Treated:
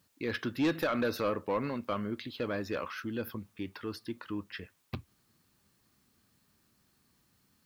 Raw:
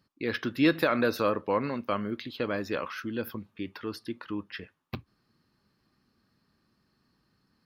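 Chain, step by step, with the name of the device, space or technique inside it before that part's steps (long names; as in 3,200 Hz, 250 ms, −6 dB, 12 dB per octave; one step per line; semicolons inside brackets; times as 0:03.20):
open-reel tape (soft clipping −20 dBFS, distortion −13 dB; parametric band 83 Hz +4.5 dB 0.91 octaves; white noise bed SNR 37 dB)
level −2.5 dB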